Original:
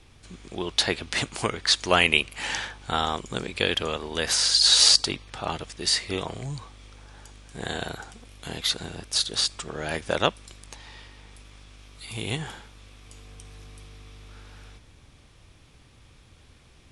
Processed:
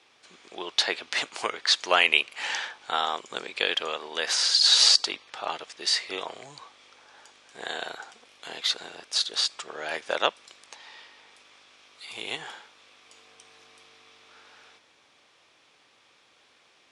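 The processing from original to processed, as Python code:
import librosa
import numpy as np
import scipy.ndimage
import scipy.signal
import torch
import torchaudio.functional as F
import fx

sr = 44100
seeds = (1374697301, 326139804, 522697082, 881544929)

y = fx.bandpass_edges(x, sr, low_hz=530.0, high_hz=6400.0)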